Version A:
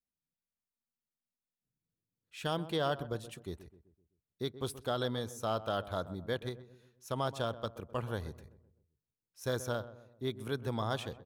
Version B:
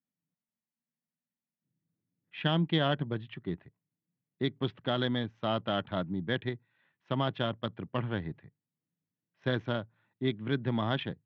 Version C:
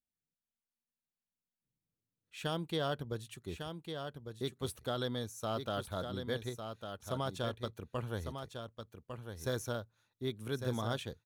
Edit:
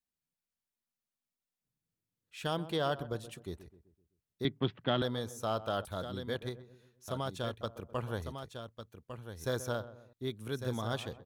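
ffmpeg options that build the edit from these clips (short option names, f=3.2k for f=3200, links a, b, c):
-filter_complex "[2:a]asplit=4[a][b][c][d];[0:a]asplit=6[e][f][g][h][i][j];[e]atrim=end=4.452[k];[1:a]atrim=start=4.448:end=5.022[l];[f]atrim=start=5.018:end=5.852[m];[a]atrim=start=5.848:end=6.352[n];[g]atrim=start=6.348:end=7.082[o];[b]atrim=start=7.078:end=7.612[p];[h]atrim=start=7.608:end=8.222[q];[c]atrim=start=8.218:end=9.452[r];[i]atrim=start=9.448:end=10.132[s];[d]atrim=start=10.128:end=10.932[t];[j]atrim=start=10.928[u];[k][l]acrossfade=d=0.004:c1=hsin:c2=hsin[v];[v][m]acrossfade=d=0.004:c1=hsin:c2=hsin[w];[w][n]acrossfade=d=0.004:c1=hsin:c2=hsin[x];[x][o]acrossfade=d=0.004:c1=hsin:c2=hsin[y];[y][p]acrossfade=d=0.004:c1=hsin:c2=hsin[z];[z][q]acrossfade=d=0.004:c1=hsin:c2=hsin[aa];[aa][r]acrossfade=d=0.004:c1=hsin:c2=hsin[ab];[ab][s]acrossfade=d=0.004:c1=hsin:c2=hsin[ac];[ac][t]acrossfade=d=0.004:c1=hsin:c2=hsin[ad];[ad][u]acrossfade=d=0.004:c1=hsin:c2=hsin"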